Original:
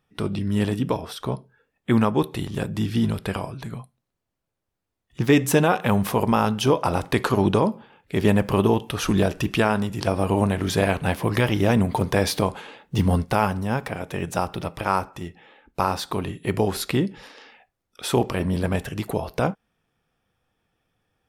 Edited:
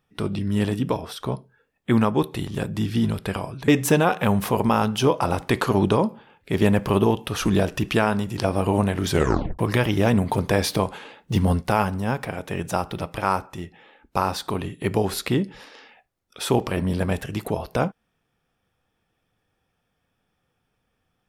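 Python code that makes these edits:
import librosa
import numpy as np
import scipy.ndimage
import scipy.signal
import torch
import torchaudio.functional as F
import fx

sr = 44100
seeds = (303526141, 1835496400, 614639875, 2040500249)

y = fx.edit(x, sr, fx.cut(start_s=3.68, length_s=1.63),
    fx.tape_stop(start_s=10.73, length_s=0.49), tone=tone)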